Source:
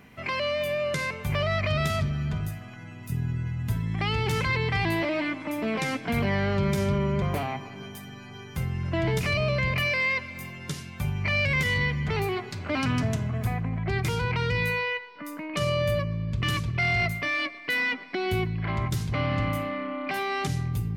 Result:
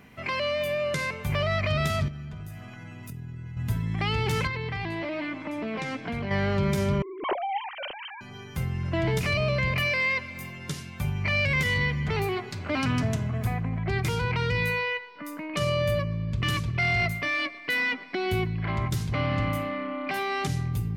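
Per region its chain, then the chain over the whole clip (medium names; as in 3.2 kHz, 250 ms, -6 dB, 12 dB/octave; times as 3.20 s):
2.08–3.57 s: band-stop 4.3 kHz, Q 25 + compression 5:1, threshold -36 dBFS
4.47–6.31 s: distance through air 72 m + compression 5:1, threshold -28 dBFS
7.02–8.21 s: formants replaced by sine waves + tilt EQ -3 dB/octave + compressor with a negative ratio -29 dBFS, ratio -0.5
whole clip: none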